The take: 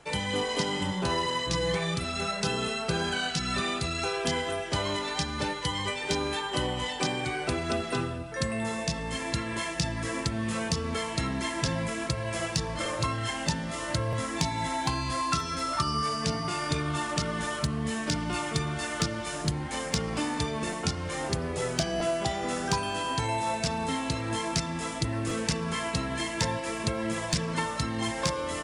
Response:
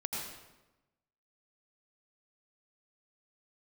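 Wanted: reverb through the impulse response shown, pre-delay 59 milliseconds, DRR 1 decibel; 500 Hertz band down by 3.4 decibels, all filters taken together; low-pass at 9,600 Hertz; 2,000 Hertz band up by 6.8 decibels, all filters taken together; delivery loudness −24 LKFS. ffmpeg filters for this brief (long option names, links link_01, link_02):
-filter_complex "[0:a]lowpass=9600,equalizer=frequency=500:width_type=o:gain=-5,equalizer=frequency=2000:width_type=o:gain=8.5,asplit=2[link_01][link_02];[1:a]atrim=start_sample=2205,adelay=59[link_03];[link_02][link_03]afir=irnorm=-1:irlink=0,volume=-4dB[link_04];[link_01][link_04]amix=inputs=2:normalize=0,volume=1.5dB"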